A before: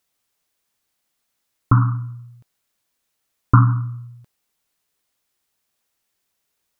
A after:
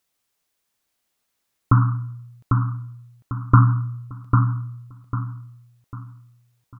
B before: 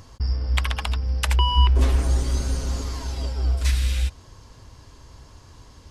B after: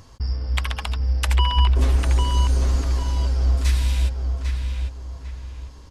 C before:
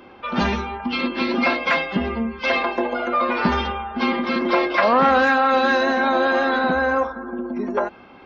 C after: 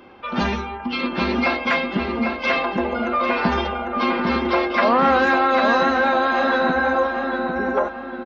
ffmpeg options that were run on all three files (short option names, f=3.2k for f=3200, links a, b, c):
-filter_complex "[0:a]asplit=2[a][b];[b]adelay=798,lowpass=f=2.8k:p=1,volume=-4dB,asplit=2[c][d];[d]adelay=798,lowpass=f=2.8k:p=1,volume=0.35,asplit=2[e][f];[f]adelay=798,lowpass=f=2.8k:p=1,volume=0.35,asplit=2[g][h];[h]adelay=798,lowpass=f=2.8k:p=1,volume=0.35[i];[a][c][e][g][i]amix=inputs=5:normalize=0,volume=-1dB"